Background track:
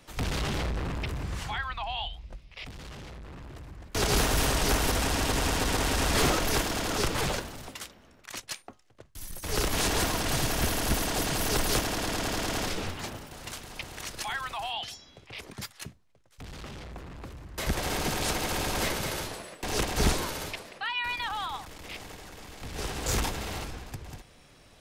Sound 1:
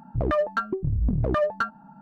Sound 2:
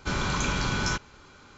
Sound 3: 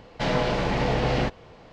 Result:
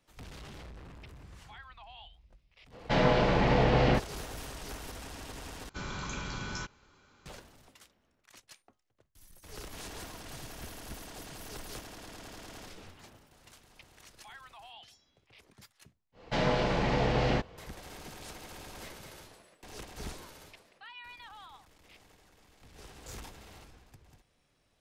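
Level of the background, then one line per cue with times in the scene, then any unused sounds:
background track -17 dB
2.70 s: add 3 -0.5 dB, fades 0.05 s + treble shelf 6.6 kHz -10.5 dB
5.69 s: replace with 2 -11 dB
16.12 s: add 3 -4 dB, fades 0.10 s
not used: 1

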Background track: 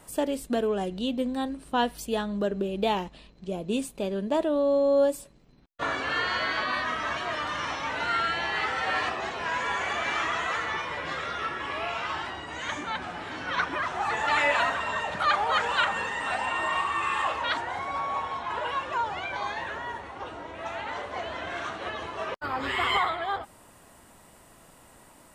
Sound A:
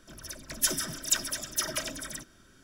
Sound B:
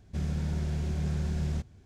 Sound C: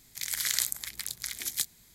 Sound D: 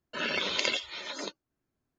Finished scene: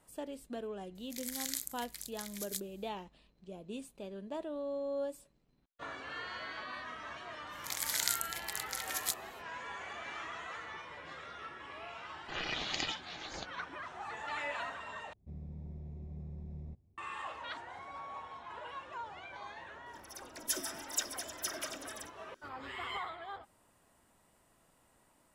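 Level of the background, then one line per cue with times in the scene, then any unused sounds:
background track -15 dB
0.95 s: add C -13 dB + treble shelf 5 kHz +4.5 dB
7.49 s: add C -4.5 dB, fades 0.05 s
12.15 s: add D -4 dB + ring modulator 240 Hz
15.13 s: replace with B -14.5 dB + boxcar filter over 29 samples
19.86 s: add A -8.5 dB + resonant low shelf 210 Hz -12 dB, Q 1.5

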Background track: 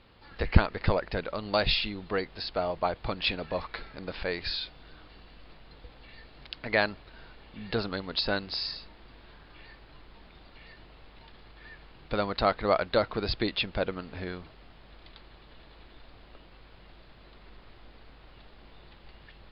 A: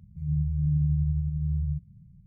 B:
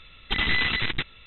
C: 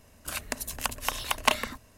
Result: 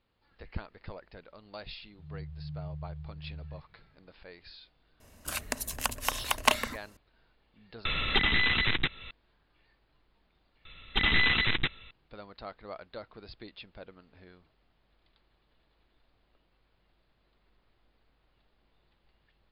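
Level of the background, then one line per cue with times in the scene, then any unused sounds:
background track -18 dB
1.82 s: add A -15.5 dB
5.00 s: add C -0.5 dB
7.85 s: replace with B -2 dB + three bands compressed up and down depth 100%
10.65 s: replace with B -1 dB

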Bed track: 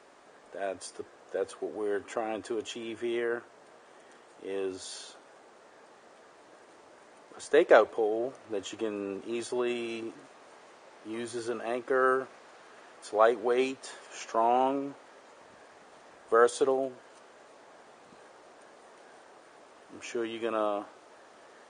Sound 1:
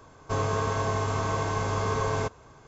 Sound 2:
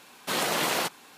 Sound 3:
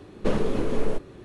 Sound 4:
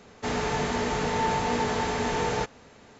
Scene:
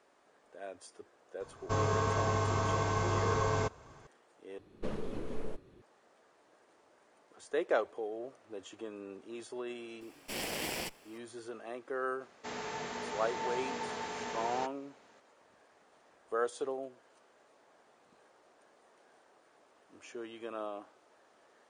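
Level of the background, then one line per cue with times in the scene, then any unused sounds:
bed track -10.5 dB
1.40 s: add 1 -3.5 dB
4.58 s: replace with 3 -14 dB
10.01 s: add 2 -9 dB + comb filter that takes the minimum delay 0.38 ms
12.21 s: add 4 -10.5 dB + high-pass 370 Hz 6 dB/octave

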